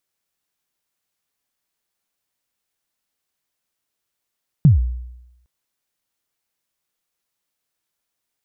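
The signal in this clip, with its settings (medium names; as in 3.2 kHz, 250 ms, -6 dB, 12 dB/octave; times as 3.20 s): kick drum length 0.81 s, from 170 Hz, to 61 Hz, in 138 ms, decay 0.91 s, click off, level -5 dB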